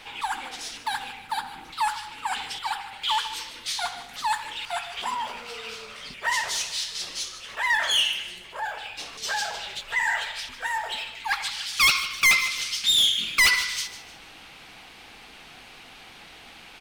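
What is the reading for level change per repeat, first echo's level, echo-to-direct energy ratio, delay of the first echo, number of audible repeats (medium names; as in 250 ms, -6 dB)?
-8.5 dB, -14.0 dB, -13.5 dB, 151 ms, 3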